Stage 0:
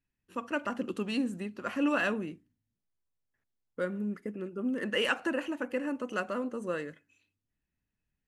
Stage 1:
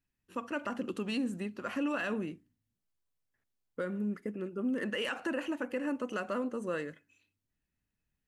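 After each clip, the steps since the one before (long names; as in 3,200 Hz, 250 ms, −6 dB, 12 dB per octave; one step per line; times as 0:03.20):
brickwall limiter −25 dBFS, peak gain reduction 9.5 dB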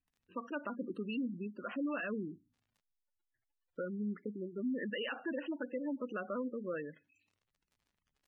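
surface crackle 100 per second −55 dBFS
gate on every frequency bin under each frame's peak −15 dB strong
level −3.5 dB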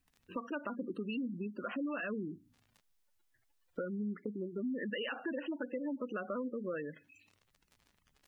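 downward compressor 2.5 to 1, threshold −52 dBFS, peak gain reduction 12.5 dB
level +11 dB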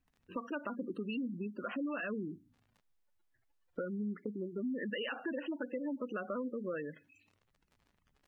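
one half of a high-frequency compander decoder only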